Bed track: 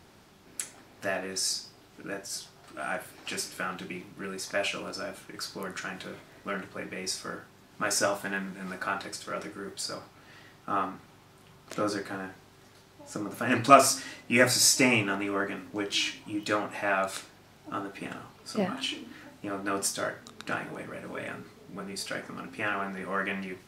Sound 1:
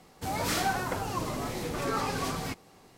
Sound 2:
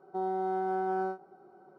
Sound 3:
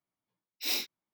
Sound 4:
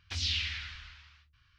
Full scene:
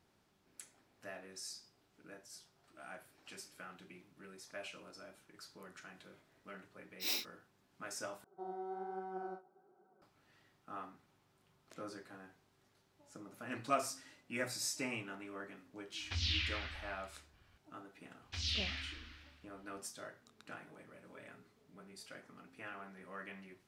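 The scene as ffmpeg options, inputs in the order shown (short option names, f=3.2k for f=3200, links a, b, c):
-filter_complex "[4:a]asplit=2[a][b];[0:a]volume=-17.5dB[c];[2:a]flanger=delay=4.2:depth=9.5:regen=36:speed=1.2:shape=sinusoidal[d];[a]highshelf=f=5.4k:g=-12[e];[b]asplit=2[f][g];[g]adelay=41,volume=-10.5dB[h];[f][h]amix=inputs=2:normalize=0[i];[c]asplit=2[j][k];[j]atrim=end=8.244[l];[d]atrim=end=1.78,asetpts=PTS-STARTPTS,volume=-9dB[m];[k]atrim=start=10.016[n];[3:a]atrim=end=1.13,asetpts=PTS-STARTPTS,volume=-6dB,afade=t=in:d=0.004:c=hsin,afade=t=out:st=1.126:d=0.004:c=hsin,adelay=6390[o];[e]atrim=end=1.58,asetpts=PTS-STARTPTS,volume=-1dB,afade=t=in:d=0.004:c=hsin,afade=t=out:st=1.576:d=0.004:c=hsin,adelay=16000[p];[i]atrim=end=1.58,asetpts=PTS-STARTPTS,volume=-6dB,afade=t=in:d=0.004:c=hsin,afade=t=out:st=1.576:d=0.004:c=hsin,adelay=18220[q];[l][m]acrossfade=d=0.004:c1=hsin:c2=hsin[r];[r][n]acrossfade=d=0.004:c1=hsin:c2=hsin[s];[s][o][p][q]amix=inputs=4:normalize=0"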